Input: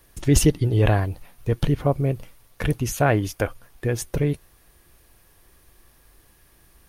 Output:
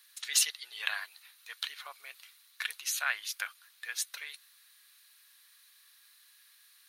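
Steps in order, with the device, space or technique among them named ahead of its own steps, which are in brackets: headphones lying on a table (HPF 1400 Hz 24 dB/oct; bell 4000 Hz +11 dB 0.35 oct); gain -2.5 dB

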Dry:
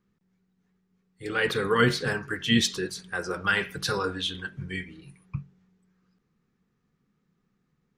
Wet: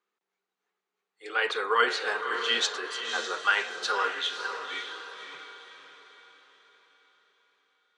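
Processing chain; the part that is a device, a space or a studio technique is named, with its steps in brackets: phone speaker on a table (speaker cabinet 470–7300 Hz, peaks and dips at 530 Hz -5 dB, 1800 Hz -4 dB, 5300 Hz -6 dB); dynamic EQ 920 Hz, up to +4 dB, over -38 dBFS, Q 0.88; diffused feedback echo 0.552 s, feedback 44%, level -7 dB

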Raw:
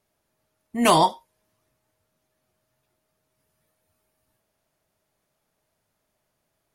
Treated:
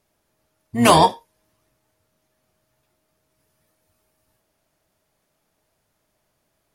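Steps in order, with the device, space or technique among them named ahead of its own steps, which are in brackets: octave pedal (harmoniser -12 st -9 dB); gain +4 dB

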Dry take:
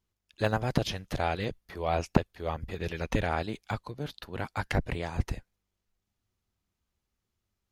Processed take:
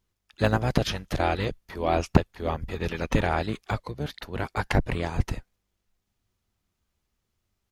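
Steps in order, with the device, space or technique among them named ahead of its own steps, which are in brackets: octave pedal (harmoniser -12 st -8 dB); gain +4 dB

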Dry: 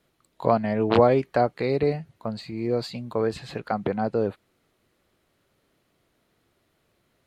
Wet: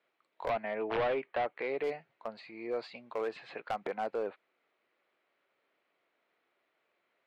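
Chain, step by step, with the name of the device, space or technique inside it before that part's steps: megaphone (BPF 520–2700 Hz; bell 2300 Hz +5 dB 0.44 oct; hard clip -22.5 dBFS, distortion -8 dB); 0.49–1.84 LPF 3700 Hz 24 dB/oct; gain -5 dB

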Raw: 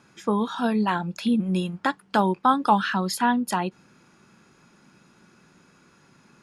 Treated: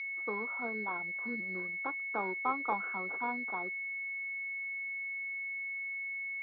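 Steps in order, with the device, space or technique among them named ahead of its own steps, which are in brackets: toy sound module (decimation joined by straight lines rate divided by 4×; pulse-width modulation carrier 2200 Hz; speaker cabinet 580–4200 Hz, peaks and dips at 610 Hz -9 dB, 880 Hz -7 dB, 1300 Hz +3 dB, 1800 Hz -8 dB, 3000 Hz -8 dB); gain -4.5 dB

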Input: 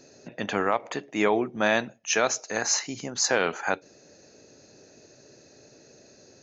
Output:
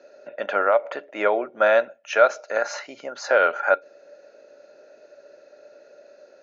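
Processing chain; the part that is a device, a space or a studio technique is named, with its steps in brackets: tin-can telephone (BPF 450–2900 Hz; small resonant body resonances 580/1400 Hz, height 16 dB, ringing for 45 ms)

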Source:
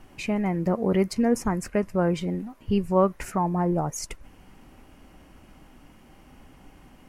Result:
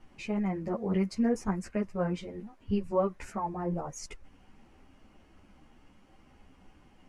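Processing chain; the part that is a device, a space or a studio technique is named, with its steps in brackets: string-machine ensemble chorus (ensemble effect; LPF 7600 Hz 12 dB/oct); gain -4.5 dB

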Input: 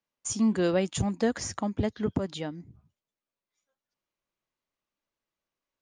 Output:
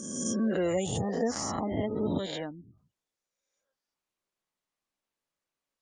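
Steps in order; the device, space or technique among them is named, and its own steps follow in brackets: spectral swells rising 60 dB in 1.54 s; 0.61–2.2 dynamic EQ 1600 Hz, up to -8 dB, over -51 dBFS, Q 4.3; noise-suppressed video call (HPF 160 Hz 6 dB/oct; spectral gate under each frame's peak -25 dB strong; gain -3.5 dB; Opus 32 kbps 48000 Hz)

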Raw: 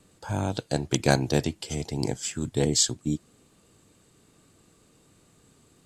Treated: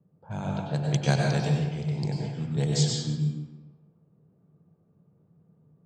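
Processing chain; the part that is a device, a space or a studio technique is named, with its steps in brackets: resonant low shelf 210 Hz +9.5 dB, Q 3; low-pass opened by the level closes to 540 Hz, open at -11 dBFS; supermarket ceiling speaker (BPF 230–7000 Hz; reverb RT60 1.2 s, pre-delay 89 ms, DRR -1 dB); gain -5.5 dB

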